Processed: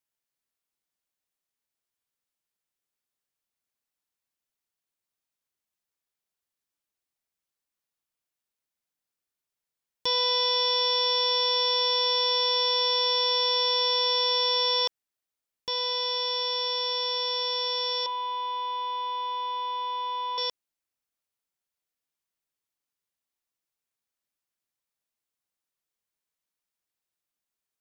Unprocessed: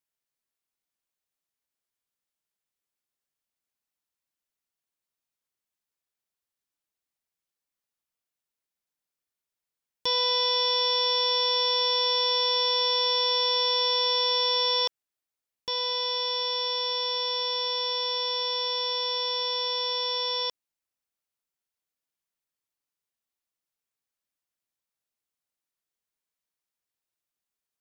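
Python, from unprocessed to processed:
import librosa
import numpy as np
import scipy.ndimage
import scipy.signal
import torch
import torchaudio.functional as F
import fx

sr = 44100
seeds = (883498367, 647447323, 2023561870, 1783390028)

y = fx.cabinet(x, sr, low_hz=450.0, low_slope=12, high_hz=2700.0, hz=(480.0, 950.0, 1400.0, 2000.0), db=(-9, 9, -10, -7), at=(18.06, 20.38))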